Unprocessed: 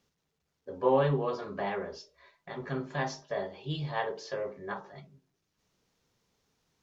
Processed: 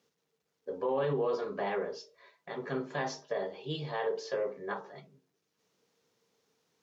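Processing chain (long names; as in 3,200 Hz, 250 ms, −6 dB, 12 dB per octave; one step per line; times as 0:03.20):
high-pass filter 180 Hz 12 dB per octave
parametric band 460 Hz +9 dB 0.21 octaves
brickwall limiter −23 dBFS, peak gain reduction 11.5 dB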